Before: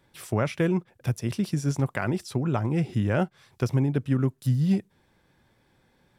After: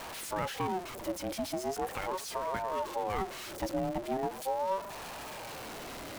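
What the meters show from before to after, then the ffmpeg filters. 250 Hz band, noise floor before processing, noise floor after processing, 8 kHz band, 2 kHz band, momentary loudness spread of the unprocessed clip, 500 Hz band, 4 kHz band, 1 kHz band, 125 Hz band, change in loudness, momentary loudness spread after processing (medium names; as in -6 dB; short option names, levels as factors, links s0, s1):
-13.0 dB, -66 dBFS, -43 dBFS, +0.5 dB, -5.5 dB, 5 LU, -3.5 dB, +1.0 dB, +4.0 dB, -21.5 dB, -9.0 dB, 8 LU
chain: -af "aeval=exprs='val(0)+0.5*0.0562*sgn(val(0))':c=same,aeval=exprs='val(0)*sin(2*PI*620*n/s+620*0.3/0.4*sin(2*PI*0.4*n/s))':c=same,volume=0.355"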